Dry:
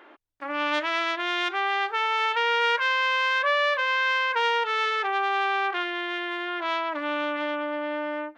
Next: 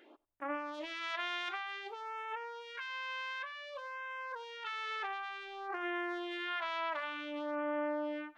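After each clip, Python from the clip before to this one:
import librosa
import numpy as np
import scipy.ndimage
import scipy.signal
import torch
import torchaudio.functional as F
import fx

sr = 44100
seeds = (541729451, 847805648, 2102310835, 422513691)

y = fx.over_compress(x, sr, threshold_db=-30.0, ratio=-1.0)
y = fx.phaser_stages(y, sr, stages=2, low_hz=210.0, high_hz=4400.0, hz=0.55, feedback_pct=5)
y = fx.echo_thinned(y, sr, ms=91, feedback_pct=20, hz=320.0, wet_db=-23.0)
y = y * librosa.db_to_amplitude(-8.0)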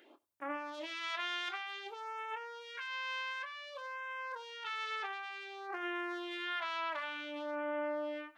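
y = scipy.signal.sosfilt(scipy.signal.butter(4, 75.0, 'highpass', fs=sr, output='sos'), x)
y = fx.high_shelf(y, sr, hz=3900.0, db=7.0)
y = fx.doubler(y, sr, ms=25.0, db=-11.0)
y = y * librosa.db_to_amplitude(-2.0)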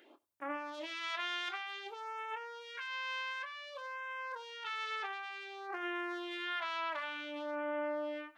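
y = x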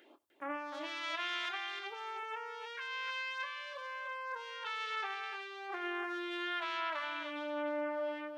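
y = x + 10.0 ** (-7.0 / 20.0) * np.pad(x, (int(301 * sr / 1000.0), 0))[:len(x)]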